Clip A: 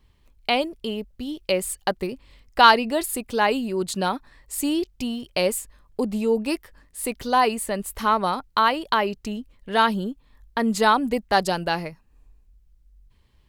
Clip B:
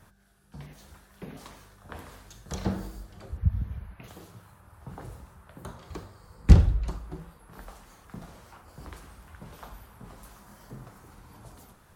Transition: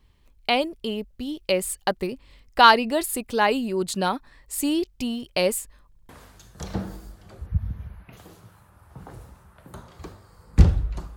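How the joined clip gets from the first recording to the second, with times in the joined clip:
clip A
5.88 stutter in place 0.07 s, 3 plays
6.09 switch to clip B from 2 s

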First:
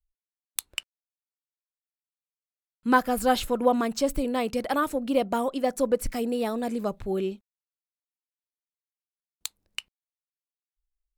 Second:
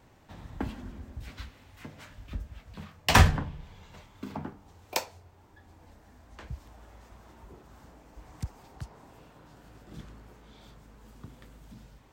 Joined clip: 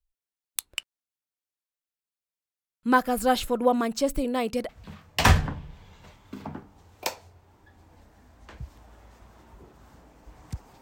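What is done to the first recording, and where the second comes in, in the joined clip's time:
first
4.69 switch to second from 2.59 s

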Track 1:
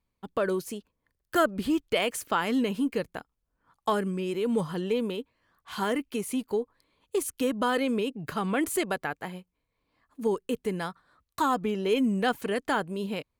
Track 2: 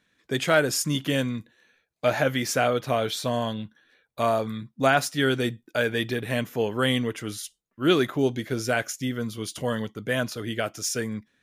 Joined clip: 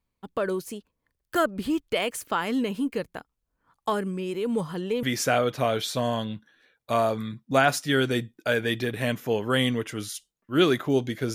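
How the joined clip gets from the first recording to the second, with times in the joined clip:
track 1
5.03 switch to track 2 from 2.32 s

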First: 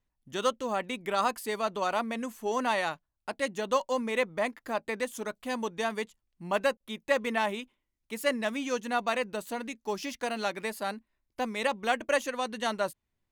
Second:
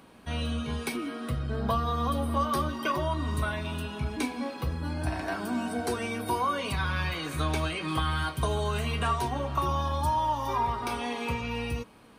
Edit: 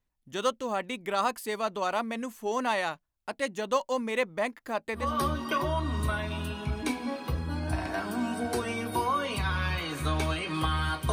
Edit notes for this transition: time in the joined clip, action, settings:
first
5.03 switch to second from 2.37 s, crossfade 0.22 s

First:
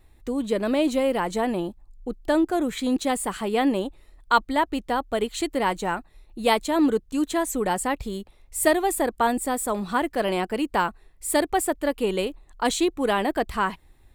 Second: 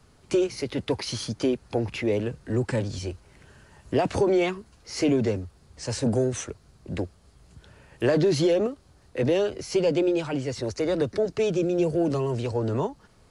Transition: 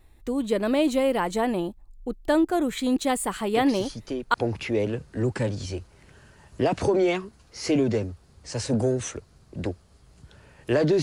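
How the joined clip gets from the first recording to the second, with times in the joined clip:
first
3.52 add second from 0.85 s 0.82 s -7 dB
4.34 switch to second from 1.67 s

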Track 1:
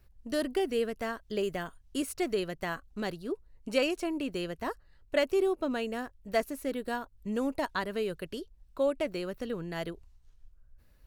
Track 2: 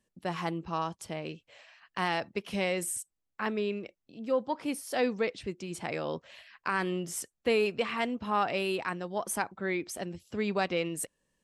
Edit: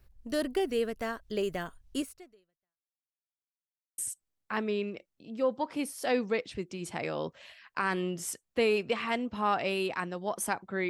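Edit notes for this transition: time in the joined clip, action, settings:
track 1
1.99–3.13 fade out exponential
3.13–3.98 mute
3.98 switch to track 2 from 2.87 s

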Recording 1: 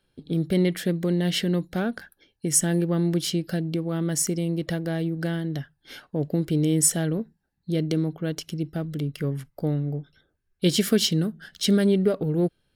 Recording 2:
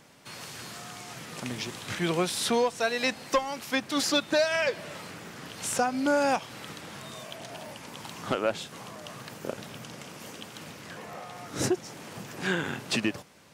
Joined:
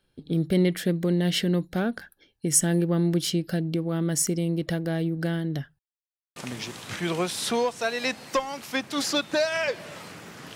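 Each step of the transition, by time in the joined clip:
recording 1
5.79–6.36 mute
6.36 switch to recording 2 from 1.35 s

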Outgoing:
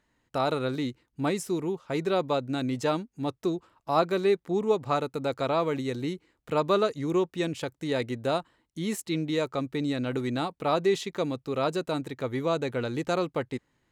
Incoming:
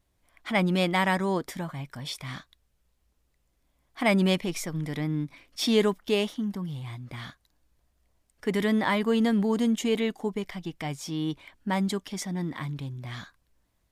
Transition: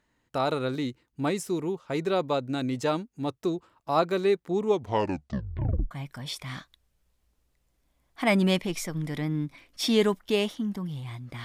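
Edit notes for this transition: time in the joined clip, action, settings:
outgoing
4.67 tape stop 1.24 s
5.91 switch to incoming from 1.7 s

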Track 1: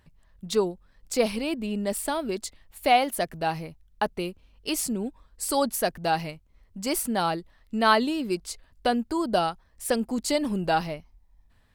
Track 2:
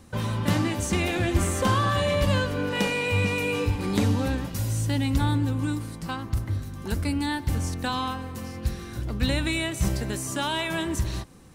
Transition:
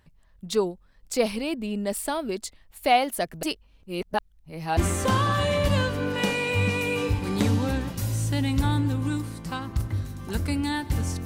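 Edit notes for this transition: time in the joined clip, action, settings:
track 1
3.43–4.77 reverse
4.77 switch to track 2 from 1.34 s

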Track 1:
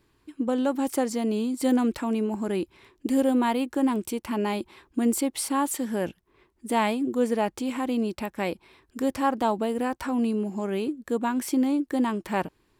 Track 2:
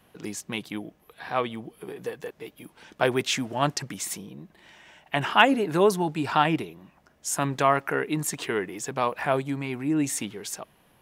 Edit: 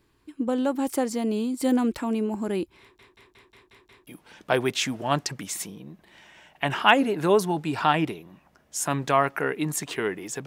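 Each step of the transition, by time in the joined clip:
track 1
2.81 stutter in place 0.18 s, 7 plays
4.07 switch to track 2 from 2.58 s

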